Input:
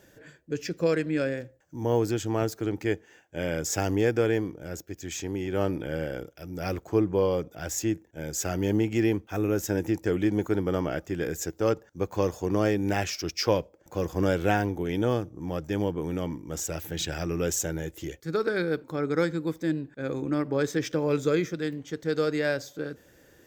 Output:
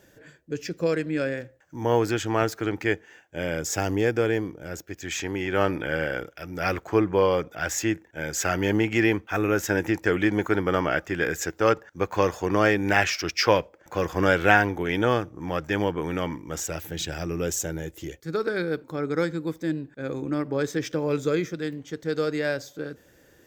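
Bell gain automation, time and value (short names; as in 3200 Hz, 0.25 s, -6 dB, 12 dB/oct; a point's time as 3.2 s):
bell 1700 Hz 2.3 oct
1.1 s +0.5 dB
1.77 s +11 dB
2.71 s +11 dB
3.36 s +3.5 dB
4.55 s +3.5 dB
5.21 s +12.5 dB
16.34 s +12.5 dB
16.96 s +0.5 dB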